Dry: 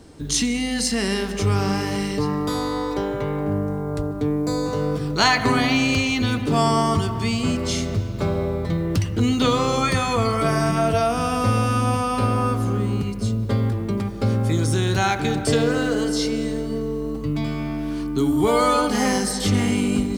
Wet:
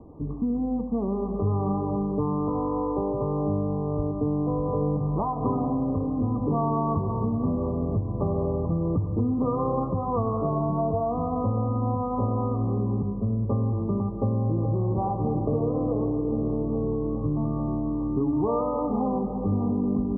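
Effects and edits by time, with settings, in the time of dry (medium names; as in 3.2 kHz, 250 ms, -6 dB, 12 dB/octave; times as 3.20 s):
3.66–4.85 s: echo throw 600 ms, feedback 80%, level -7 dB
12.65–13.41 s: Chebyshev band-stop 1.1–4.3 kHz
14.12–14.86 s: echo throw 420 ms, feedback 80%, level -6 dB
whole clip: compression 4:1, threshold -21 dBFS; Chebyshev low-pass 1.2 kHz, order 10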